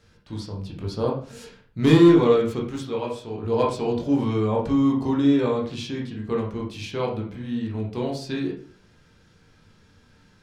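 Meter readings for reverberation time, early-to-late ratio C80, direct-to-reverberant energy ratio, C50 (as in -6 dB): 0.45 s, 11.0 dB, -2.5 dB, 6.0 dB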